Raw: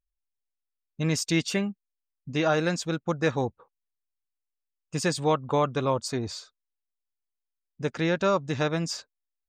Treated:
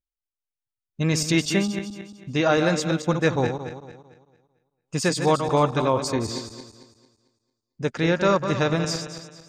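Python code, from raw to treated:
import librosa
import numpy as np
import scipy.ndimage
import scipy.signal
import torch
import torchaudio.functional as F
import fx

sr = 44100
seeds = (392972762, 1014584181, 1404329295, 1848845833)

y = fx.reverse_delay_fb(x, sr, ms=112, feedback_pct=60, wet_db=-8)
y = fx.noise_reduce_blind(y, sr, reduce_db=14)
y = F.gain(torch.from_numpy(y), 3.5).numpy()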